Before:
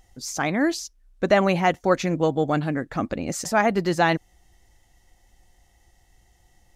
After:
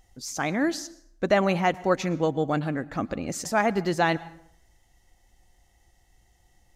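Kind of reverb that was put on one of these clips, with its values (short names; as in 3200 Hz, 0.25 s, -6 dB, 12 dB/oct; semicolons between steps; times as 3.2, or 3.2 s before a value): plate-style reverb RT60 0.68 s, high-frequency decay 0.7×, pre-delay 0.1 s, DRR 19.5 dB; gain -3 dB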